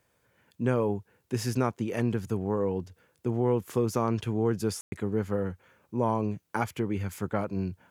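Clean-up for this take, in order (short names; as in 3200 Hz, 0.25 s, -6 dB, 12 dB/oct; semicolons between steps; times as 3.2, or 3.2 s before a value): room tone fill 4.81–4.92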